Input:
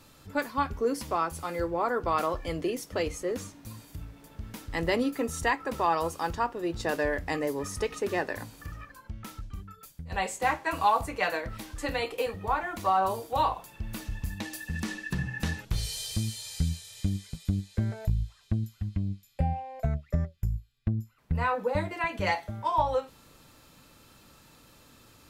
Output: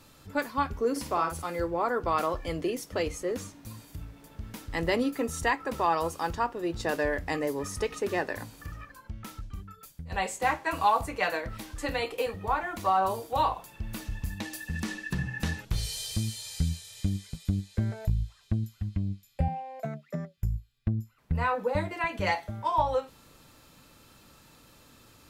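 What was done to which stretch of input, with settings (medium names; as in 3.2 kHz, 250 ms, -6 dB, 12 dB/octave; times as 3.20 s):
0.91–1.42 s: doubling 50 ms -7 dB
19.48–20.38 s: steep high-pass 160 Hz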